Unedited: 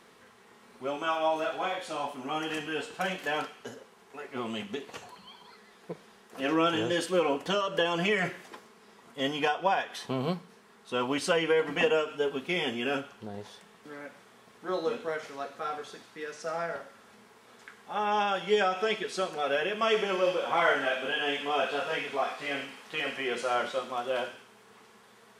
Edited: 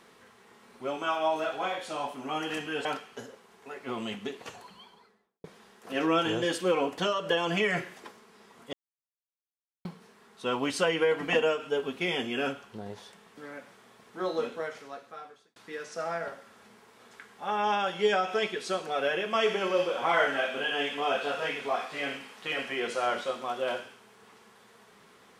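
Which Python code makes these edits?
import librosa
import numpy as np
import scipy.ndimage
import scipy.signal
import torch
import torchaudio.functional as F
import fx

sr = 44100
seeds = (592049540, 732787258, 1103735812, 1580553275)

y = fx.studio_fade_out(x, sr, start_s=5.15, length_s=0.77)
y = fx.edit(y, sr, fx.cut(start_s=2.85, length_s=0.48),
    fx.silence(start_s=9.21, length_s=1.12),
    fx.fade_out_span(start_s=14.91, length_s=1.13), tone=tone)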